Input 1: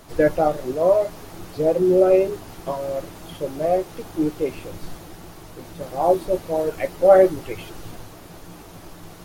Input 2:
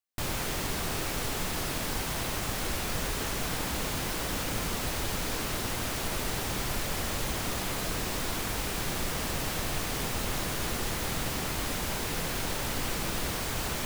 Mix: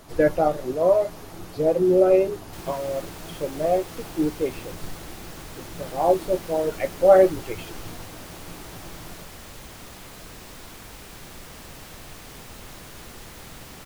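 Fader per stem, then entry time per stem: -1.5, -10.0 dB; 0.00, 2.35 s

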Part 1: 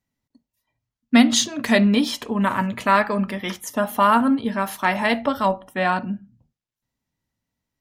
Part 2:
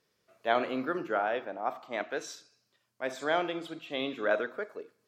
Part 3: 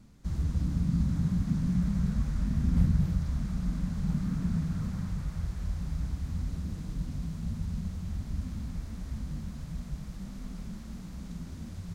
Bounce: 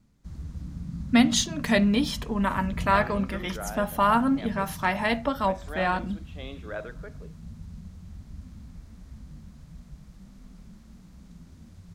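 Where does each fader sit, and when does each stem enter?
-5.0, -8.0, -8.0 dB; 0.00, 2.45, 0.00 s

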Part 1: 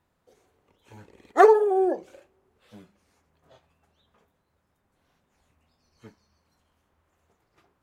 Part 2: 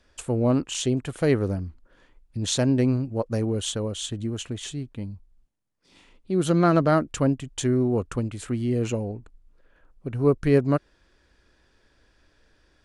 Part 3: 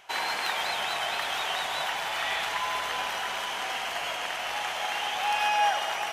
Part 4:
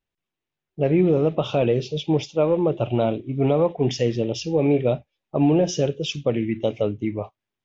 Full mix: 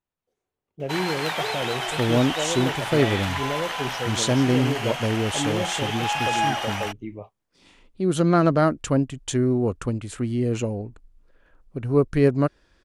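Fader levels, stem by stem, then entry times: -19.0, +1.0, +1.0, -9.5 dB; 0.00, 1.70, 0.80, 0.00 s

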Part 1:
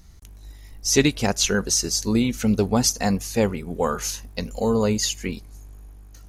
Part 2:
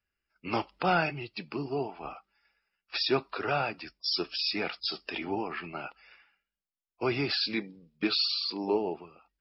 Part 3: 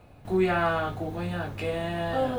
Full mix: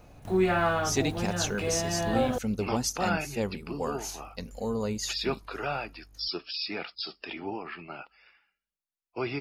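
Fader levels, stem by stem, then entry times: -10.0, -3.0, -0.5 dB; 0.00, 2.15, 0.00 s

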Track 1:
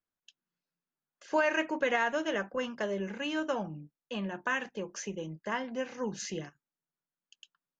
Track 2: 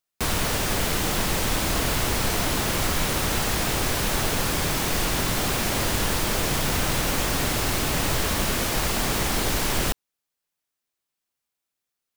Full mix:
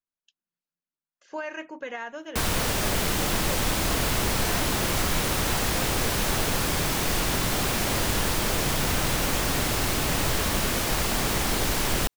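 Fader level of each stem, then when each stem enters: -6.5, -1.0 dB; 0.00, 2.15 s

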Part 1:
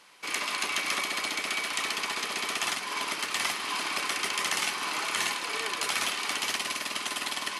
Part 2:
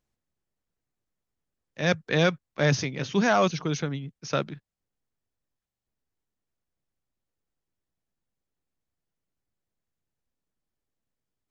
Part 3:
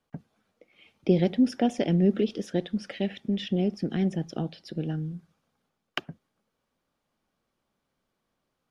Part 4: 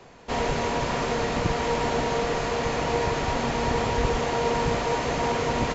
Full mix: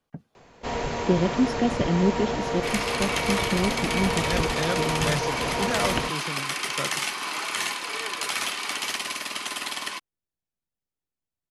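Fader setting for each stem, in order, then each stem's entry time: +1.0, -6.5, 0.0, -3.0 dB; 2.40, 2.45, 0.00, 0.35 s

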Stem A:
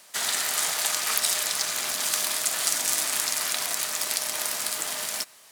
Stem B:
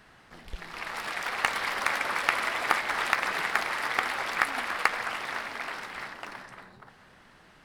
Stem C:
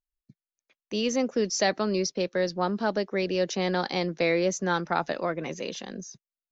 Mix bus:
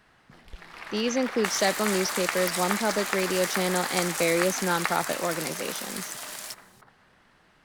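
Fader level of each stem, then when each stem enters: -8.0, -4.5, 0.0 dB; 1.30, 0.00, 0.00 s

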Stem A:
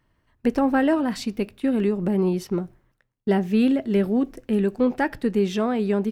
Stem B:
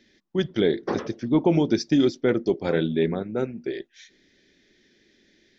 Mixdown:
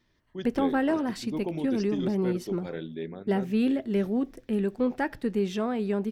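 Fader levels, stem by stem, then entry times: -5.5, -13.0 dB; 0.00, 0.00 s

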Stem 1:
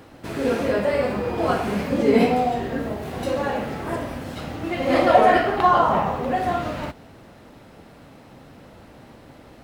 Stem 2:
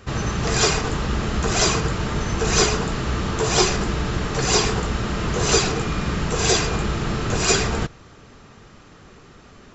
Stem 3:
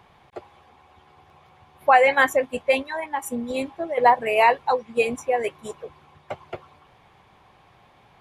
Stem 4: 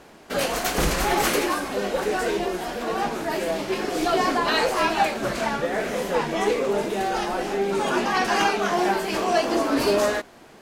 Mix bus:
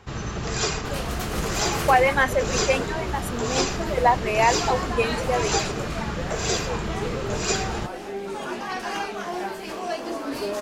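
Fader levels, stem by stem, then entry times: off, -6.5 dB, -2.5 dB, -8.0 dB; off, 0.00 s, 0.00 s, 0.55 s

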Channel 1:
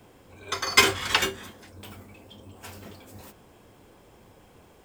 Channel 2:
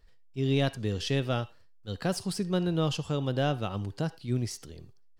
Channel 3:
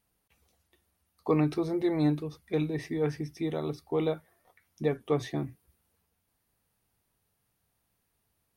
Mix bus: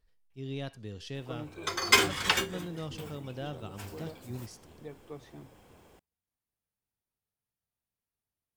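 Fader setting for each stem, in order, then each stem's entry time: -3.5, -11.5, -17.0 dB; 1.15, 0.00, 0.00 s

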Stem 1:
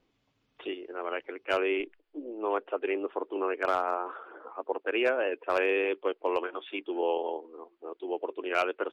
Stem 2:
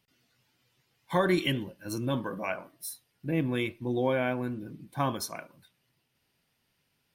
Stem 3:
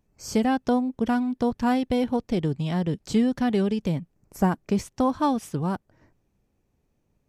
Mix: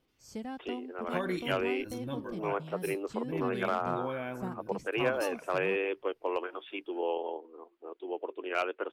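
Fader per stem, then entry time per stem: -3.5, -9.0, -17.5 dB; 0.00, 0.00, 0.00 s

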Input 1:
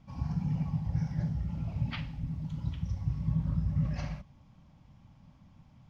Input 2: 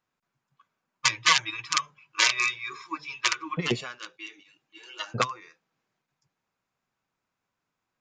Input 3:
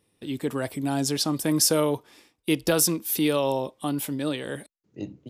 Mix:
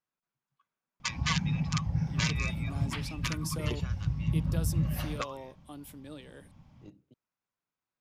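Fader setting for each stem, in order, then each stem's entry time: +1.0, -11.0, -18.0 dB; 1.00, 0.00, 1.85 s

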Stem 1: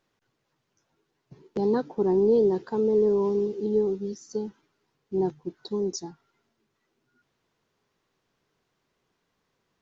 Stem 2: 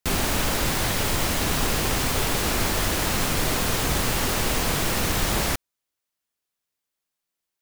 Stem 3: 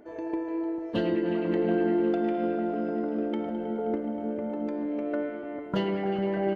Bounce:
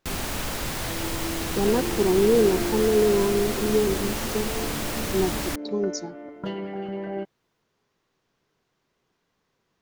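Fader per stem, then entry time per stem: +1.5, -6.0, -4.0 dB; 0.00, 0.00, 0.70 s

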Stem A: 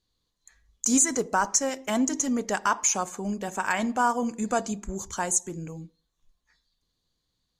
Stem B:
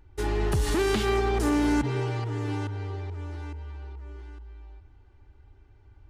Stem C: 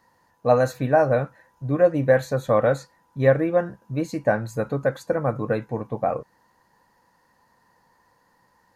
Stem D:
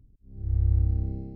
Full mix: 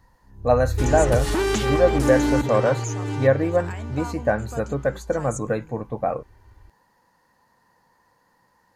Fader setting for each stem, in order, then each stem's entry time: -12.0, +2.5, -0.5, -3.0 dB; 0.00, 0.60, 0.00, 0.00 s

